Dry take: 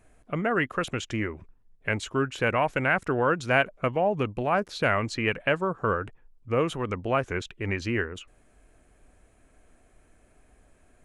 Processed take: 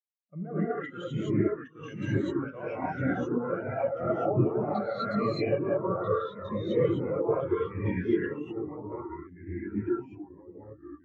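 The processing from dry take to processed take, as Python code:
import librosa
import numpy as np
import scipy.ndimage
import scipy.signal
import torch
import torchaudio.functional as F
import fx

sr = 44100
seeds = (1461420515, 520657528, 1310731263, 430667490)

y = fx.diode_clip(x, sr, knee_db=-19.0)
y = scipy.signal.sosfilt(scipy.signal.butter(2, 63.0, 'highpass', fs=sr, output='sos'), y)
y = fx.low_shelf(y, sr, hz=180.0, db=-6.5)
y = fx.level_steps(y, sr, step_db=19)
y = fx.echo_pitch(y, sr, ms=708, semitones=-2, count=2, db_per_echo=-3.0)
y = fx.rev_gated(y, sr, seeds[0], gate_ms=280, shape='rising', drr_db=-6.5)
y = fx.spectral_expand(y, sr, expansion=2.5)
y = y * librosa.db_to_amplitude(3.5)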